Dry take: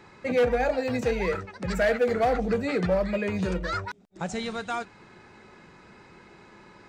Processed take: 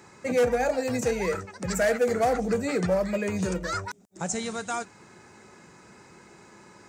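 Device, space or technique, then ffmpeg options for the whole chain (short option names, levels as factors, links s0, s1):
budget condenser microphone: -af "highpass=71,highshelf=f=5100:t=q:w=1.5:g=10"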